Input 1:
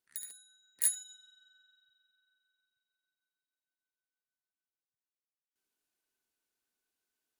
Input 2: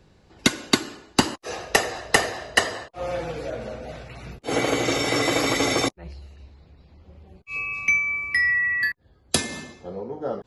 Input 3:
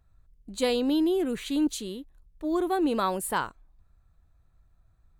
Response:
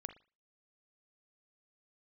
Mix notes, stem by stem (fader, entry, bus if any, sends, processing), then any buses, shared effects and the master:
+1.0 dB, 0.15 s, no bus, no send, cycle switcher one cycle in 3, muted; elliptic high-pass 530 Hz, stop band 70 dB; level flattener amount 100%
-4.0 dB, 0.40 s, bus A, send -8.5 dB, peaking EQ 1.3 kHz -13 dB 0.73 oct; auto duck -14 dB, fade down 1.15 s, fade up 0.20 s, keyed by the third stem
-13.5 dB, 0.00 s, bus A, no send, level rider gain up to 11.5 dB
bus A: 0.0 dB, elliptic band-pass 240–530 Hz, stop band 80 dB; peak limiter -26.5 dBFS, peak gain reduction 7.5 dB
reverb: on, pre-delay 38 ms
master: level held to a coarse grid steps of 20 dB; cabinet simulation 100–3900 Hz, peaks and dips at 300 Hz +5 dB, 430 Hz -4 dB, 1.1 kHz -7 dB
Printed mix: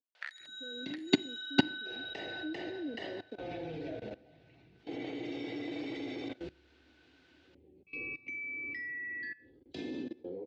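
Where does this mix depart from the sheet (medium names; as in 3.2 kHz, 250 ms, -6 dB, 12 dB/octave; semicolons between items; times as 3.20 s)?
stem 1: missing cycle switcher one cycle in 3, muted; stem 2 -4.0 dB -> +7.0 dB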